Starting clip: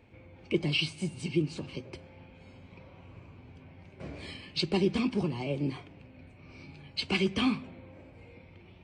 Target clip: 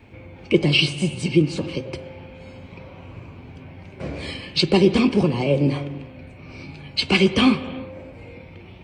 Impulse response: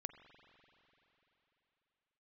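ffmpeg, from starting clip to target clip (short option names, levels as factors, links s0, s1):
-filter_complex "[0:a]adynamicequalizer=threshold=0.00158:dfrequency=520:dqfactor=7.2:tfrequency=520:tqfactor=7.2:attack=5:release=100:ratio=0.375:range=4:mode=boostabove:tftype=bell,asplit=2[s0][s1];[1:a]atrim=start_sample=2205,afade=t=out:st=0.42:d=0.01,atrim=end_sample=18963[s2];[s1][s2]afir=irnorm=-1:irlink=0,volume=4.22[s3];[s0][s3]amix=inputs=2:normalize=0"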